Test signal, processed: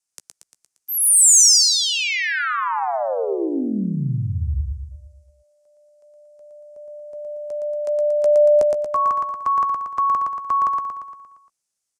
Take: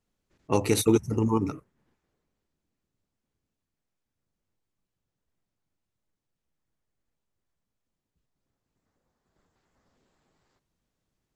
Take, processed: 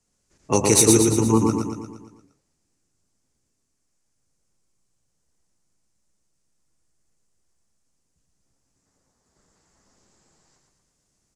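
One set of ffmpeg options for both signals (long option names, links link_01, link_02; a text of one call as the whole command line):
ffmpeg -i in.wav -filter_complex "[0:a]lowpass=frequency=9000:width=0.5412,lowpass=frequency=9000:width=1.3066,acrossover=split=340|730|2700[link_01][link_02][link_03][link_04];[link_04]aexciter=amount=2.9:drive=8.5:freq=5000[link_05];[link_01][link_02][link_03][link_05]amix=inputs=4:normalize=0,asplit=2[link_06][link_07];[link_07]adelay=15,volume=-13.5dB[link_08];[link_06][link_08]amix=inputs=2:normalize=0,aecho=1:1:116|232|348|464|580|696|812:0.668|0.361|0.195|0.105|0.0568|0.0307|0.0166,volume=4dB" out.wav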